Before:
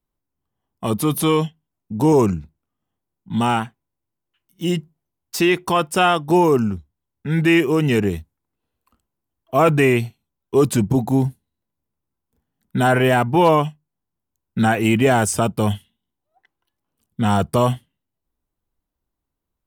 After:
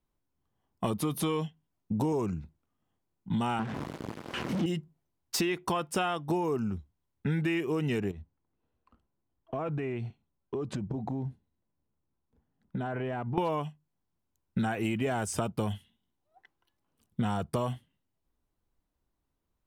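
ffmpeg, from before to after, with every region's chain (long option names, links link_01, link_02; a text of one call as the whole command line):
ffmpeg -i in.wav -filter_complex "[0:a]asettb=1/sr,asplit=3[link_01][link_02][link_03];[link_01]atrim=end=3.594[link_04];[link_02]atrim=start=3.59:end=4.66,asetpts=PTS-STARTPTS,afade=type=in:duration=0.004:curve=qsin,afade=type=out:start_time=1.066:duration=0.004:curve=qsin,aeval=exprs='val(0)+0.5*0.0631*sgn(val(0))':channel_layout=same,highpass=230,aemphasis=mode=reproduction:type=riaa[link_05];[link_03]atrim=start=4.656[link_06];[link_04][link_05]acrossfade=duration=0.004:curve1=hsin:curve2=qsin[link_07];[link_07][link_06]acrossfade=duration=0.004:curve1=qsin:curve2=hsin,asettb=1/sr,asplit=3[link_08][link_09][link_10];[link_08]atrim=end=8.114[link_11];[link_09]atrim=start=8.11:end=13.38,asetpts=PTS-STARTPTS,afade=type=in:duration=0.004:curve=qsin,afade=type=out:start_time=5.266:duration=0.004:curve=qsin,highshelf=frequency=2100:gain=-10,acompressor=threshold=-30dB:ratio=12:attack=3.2:release=140:knee=1:detection=peak,lowpass=5700[link_12];[link_10]atrim=start=13.376[link_13];[link_11][link_12]acrossfade=duration=0.004:curve1=hsin:curve2=qsin[link_14];[link_14][link_13]acrossfade=duration=0.004:curve1=qsin:curve2=hsin,highshelf=frequency=9000:gain=-7.5,acompressor=threshold=-27dB:ratio=10" out.wav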